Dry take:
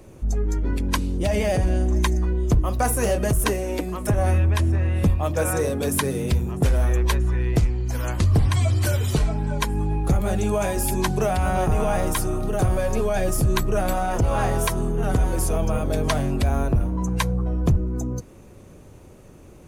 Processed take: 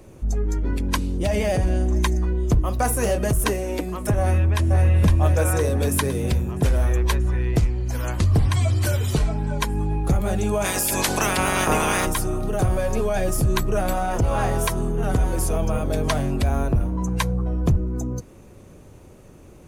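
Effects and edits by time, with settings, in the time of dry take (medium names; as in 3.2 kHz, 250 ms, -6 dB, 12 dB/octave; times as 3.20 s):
4.19–4.84 s: echo throw 510 ms, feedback 60%, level -4 dB
10.64–12.05 s: spectral peaks clipped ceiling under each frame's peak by 24 dB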